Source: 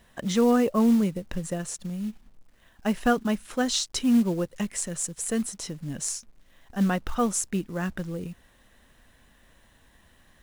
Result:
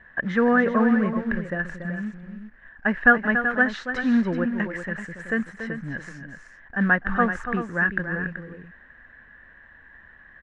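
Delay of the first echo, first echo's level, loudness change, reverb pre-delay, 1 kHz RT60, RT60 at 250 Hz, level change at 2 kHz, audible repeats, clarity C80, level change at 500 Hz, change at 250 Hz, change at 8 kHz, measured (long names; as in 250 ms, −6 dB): 284 ms, −9.5 dB, +3.5 dB, no reverb audible, no reverb audible, no reverb audible, +16.0 dB, 2, no reverb audible, +1.5 dB, +1.0 dB, below −20 dB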